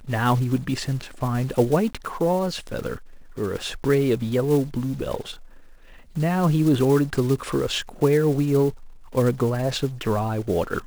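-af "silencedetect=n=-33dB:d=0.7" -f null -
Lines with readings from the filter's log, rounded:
silence_start: 5.35
silence_end: 6.16 | silence_duration: 0.82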